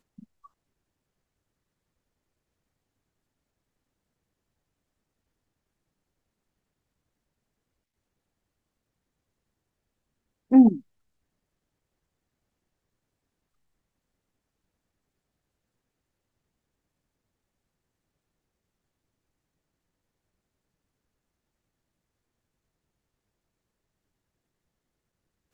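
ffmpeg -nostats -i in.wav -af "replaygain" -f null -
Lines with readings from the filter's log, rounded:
track_gain = +64.0 dB
track_peak = 0.300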